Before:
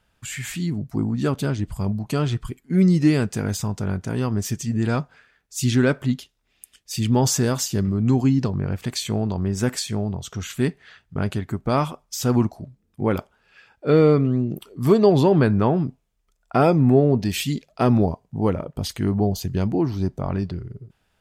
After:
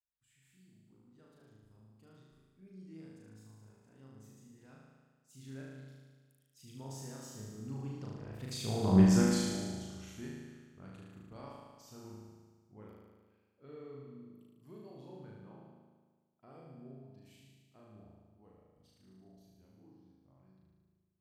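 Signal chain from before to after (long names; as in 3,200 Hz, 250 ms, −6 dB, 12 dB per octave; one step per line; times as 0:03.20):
source passing by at 0:08.99, 17 m/s, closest 1 metre
flutter between parallel walls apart 6.4 metres, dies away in 1.5 s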